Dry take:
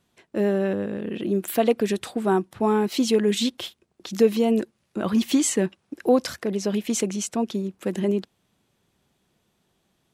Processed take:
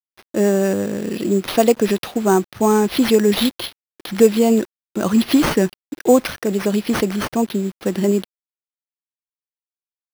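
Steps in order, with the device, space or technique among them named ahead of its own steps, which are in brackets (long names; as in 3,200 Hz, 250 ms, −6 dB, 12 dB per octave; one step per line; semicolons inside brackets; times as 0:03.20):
early 8-bit sampler (sample-rate reduction 7,500 Hz, jitter 0%; bit reduction 8 bits)
level +6 dB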